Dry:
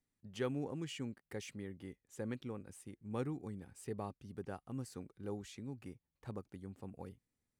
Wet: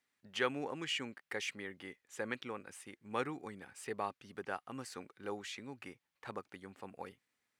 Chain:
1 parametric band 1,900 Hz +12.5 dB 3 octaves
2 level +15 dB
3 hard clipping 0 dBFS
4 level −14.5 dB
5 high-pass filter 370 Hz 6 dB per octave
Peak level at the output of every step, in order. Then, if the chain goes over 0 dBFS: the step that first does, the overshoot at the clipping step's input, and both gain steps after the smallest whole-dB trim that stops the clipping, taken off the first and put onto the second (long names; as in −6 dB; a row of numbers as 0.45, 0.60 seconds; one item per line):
−18.5, −3.5, −3.5, −18.0, −17.0 dBFS
no step passes full scale